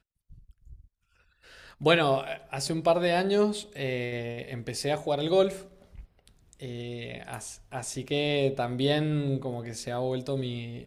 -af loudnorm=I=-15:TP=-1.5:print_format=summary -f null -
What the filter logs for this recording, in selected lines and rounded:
Input Integrated:    -29.0 LUFS
Input True Peak:      -7.9 dBTP
Input LRA:             4.0 LU
Input Threshold:     -39.9 LUFS